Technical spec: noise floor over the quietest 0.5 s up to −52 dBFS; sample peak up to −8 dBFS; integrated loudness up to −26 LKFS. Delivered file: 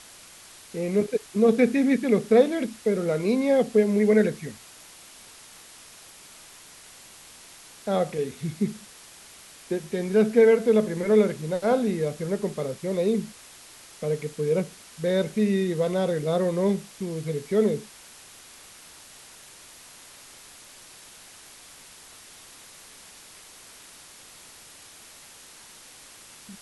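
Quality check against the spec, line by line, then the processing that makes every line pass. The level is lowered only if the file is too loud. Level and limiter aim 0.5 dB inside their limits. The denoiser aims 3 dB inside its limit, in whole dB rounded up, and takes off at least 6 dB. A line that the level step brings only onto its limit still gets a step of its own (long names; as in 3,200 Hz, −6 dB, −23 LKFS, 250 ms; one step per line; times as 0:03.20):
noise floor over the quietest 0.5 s −48 dBFS: out of spec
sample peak −6.5 dBFS: out of spec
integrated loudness −24.0 LKFS: out of spec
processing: broadband denoise 6 dB, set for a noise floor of −48 dBFS
level −2.5 dB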